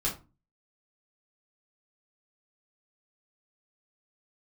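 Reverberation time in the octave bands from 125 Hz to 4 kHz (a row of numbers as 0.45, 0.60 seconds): 0.50, 0.45, 0.30, 0.30, 0.25, 0.20 seconds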